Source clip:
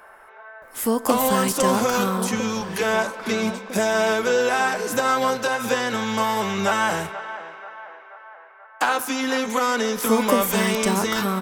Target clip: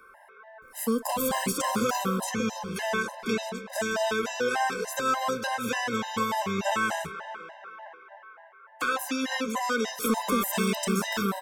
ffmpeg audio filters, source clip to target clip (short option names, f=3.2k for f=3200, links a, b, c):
-filter_complex "[0:a]acrossover=split=310|740|2300[a][b][c][d];[b]alimiter=limit=-22.5dB:level=0:latency=1[e];[a][e][c][d]amix=inputs=4:normalize=0,asoftclip=type=hard:threshold=-13dB,afftfilt=real='re*gt(sin(2*PI*3.4*pts/sr)*(1-2*mod(floor(b*sr/1024/530),2)),0)':imag='im*gt(sin(2*PI*3.4*pts/sr)*(1-2*mod(floor(b*sr/1024/530),2)),0)':win_size=1024:overlap=0.75,volume=-2.5dB"